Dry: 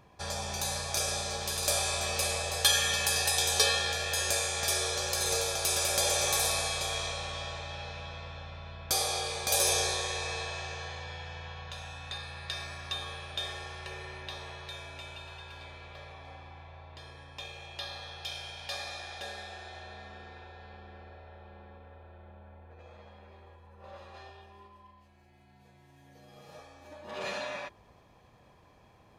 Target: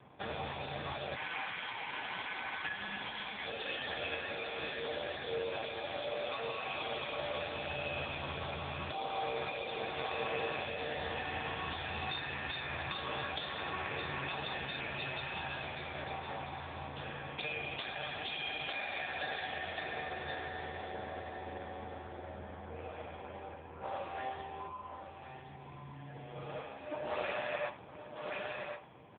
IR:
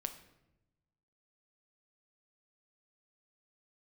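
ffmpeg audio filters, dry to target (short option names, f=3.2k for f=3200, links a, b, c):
-filter_complex "[0:a]bandreject=f=50:t=h:w=6,bandreject=f=100:t=h:w=6,bandreject=f=150:t=h:w=6,bandreject=f=200:t=h:w=6,bandreject=f=250:t=h:w=6,dynaudnorm=f=180:g=9:m=6dB,aecho=1:1:1071:0.316,asplit=3[a][b][c];[a]afade=t=out:st=1.14:d=0.02[d];[b]aeval=exprs='val(0)*sin(2*PI*1600*n/s)':c=same,afade=t=in:st=1.14:d=0.02,afade=t=out:st=3.44:d=0.02[e];[c]afade=t=in:st=3.44:d=0.02[f];[d][e][f]amix=inputs=3:normalize=0,acompressor=threshold=-34dB:ratio=8[g];[1:a]atrim=start_sample=2205,afade=t=out:st=0.14:d=0.01,atrim=end_sample=6615[h];[g][h]afir=irnorm=-1:irlink=0,volume=6.5dB" -ar 8000 -c:a libopencore_amrnb -b:a 5150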